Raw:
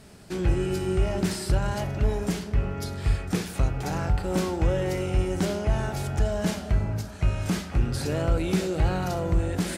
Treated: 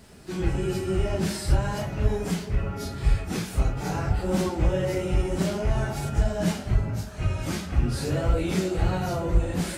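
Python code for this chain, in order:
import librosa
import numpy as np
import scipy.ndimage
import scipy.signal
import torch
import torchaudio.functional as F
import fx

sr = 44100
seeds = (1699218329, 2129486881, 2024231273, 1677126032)

y = fx.phase_scramble(x, sr, seeds[0], window_ms=100)
y = fx.quant_dither(y, sr, seeds[1], bits=12, dither='none')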